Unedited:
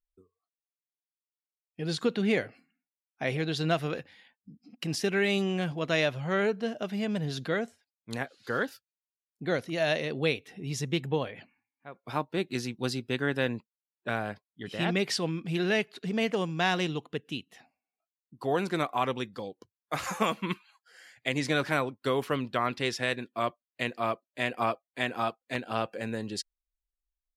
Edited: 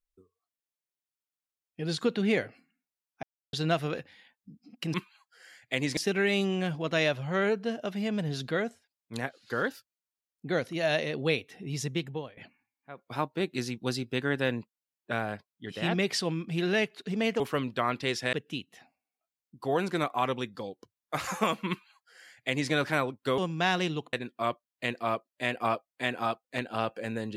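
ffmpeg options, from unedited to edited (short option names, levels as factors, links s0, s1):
-filter_complex "[0:a]asplit=10[s0][s1][s2][s3][s4][s5][s6][s7][s8][s9];[s0]atrim=end=3.23,asetpts=PTS-STARTPTS,afade=t=out:st=3.226:d=0.004:c=hsin[s10];[s1]atrim=start=3.23:end=3.53,asetpts=PTS-STARTPTS,volume=0[s11];[s2]atrim=start=3.53:end=4.942,asetpts=PTS-STARTPTS,afade=t=in:d=0.004:c=hsin[s12];[s3]atrim=start=20.478:end=21.512[s13];[s4]atrim=start=4.938:end=11.34,asetpts=PTS-STARTPTS,afade=t=out:st=5.862:d=0.54:silence=0.125893[s14];[s5]atrim=start=11.34:end=16.372,asetpts=PTS-STARTPTS,afade=t=in:d=0.004:c=hsin:silence=0.125893[s15];[s6]atrim=start=22.168:end=23.102[s16];[s7]atrim=start=17.118:end=22.172[s17];[s8]atrim=start=16.368:end=17.122[s18];[s9]atrim=start=23.098[s19];[s10][s11][s12]concat=n=3:v=0:a=1[s20];[s20][s13]acrossfade=d=0.004:c1=hsin:c2=hsin[s21];[s14][s15]concat=n=2:v=0:a=1[s22];[s21][s22]acrossfade=d=0.004:c1=hsin:c2=hsin[s23];[s23][s16]acrossfade=d=0.004:c1=hsin:c2=hsin[s24];[s24][s17]acrossfade=d=0.004:c1=hsin:c2=hsin[s25];[s25][s18]acrossfade=d=0.004:c1=hsin:c2=hsin[s26];[s26][s19]acrossfade=d=0.004:c1=hsin:c2=hsin"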